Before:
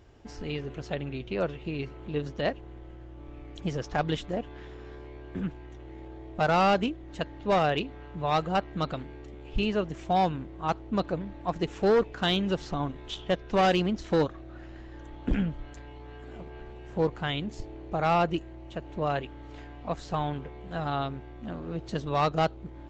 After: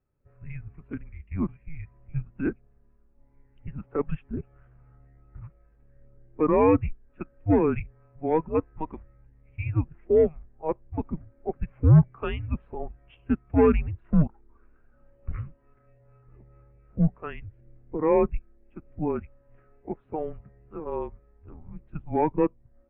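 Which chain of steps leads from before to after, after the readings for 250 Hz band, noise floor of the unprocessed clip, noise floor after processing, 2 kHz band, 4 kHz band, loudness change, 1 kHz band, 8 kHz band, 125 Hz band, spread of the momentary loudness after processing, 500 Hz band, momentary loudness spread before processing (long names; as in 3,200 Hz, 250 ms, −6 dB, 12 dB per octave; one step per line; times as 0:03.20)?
+3.5 dB, −45 dBFS, −61 dBFS, −8.0 dB, below −20 dB, +3.0 dB, −5.0 dB, can't be measured, +6.0 dB, 21 LU, +2.0 dB, 21 LU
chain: single-sideband voice off tune −310 Hz 250–2,800 Hz
every bin expanded away from the loudest bin 1.5 to 1
level +5.5 dB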